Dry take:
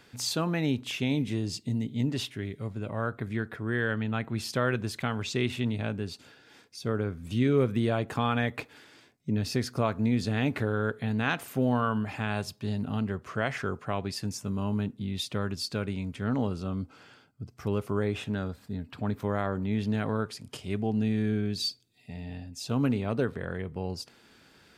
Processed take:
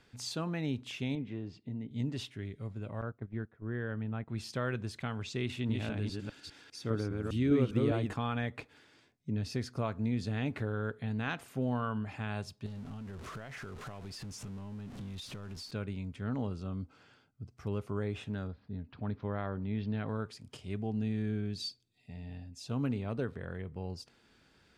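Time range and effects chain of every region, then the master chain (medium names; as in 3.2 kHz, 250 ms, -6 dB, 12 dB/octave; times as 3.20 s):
1.15–1.91 s: low-pass 2.2 kHz + bass shelf 120 Hz -11 dB
3.01–4.28 s: low-pass 1.1 kHz 6 dB/octave + gate -35 dBFS, range -13 dB
5.49–8.15 s: chunks repeated in reverse 202 ms, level -2 dB + peaking EQ 300 Hz +7.5 dB 0.25 oct + tape noise reduction on one side only encoder only
12.66–15.71 s: jump at every zero crossing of -34 dBFS + compression 5:1, threshold -34 dBFS
18.47–20.08 s: steep low-pass 5 kHz + tape noise reduction on one side only decoder only
whole clip: Bessel low-pass 9.3 kHz, order 2; bass shelf 76 Hz +10.5 dB; trim -8 dB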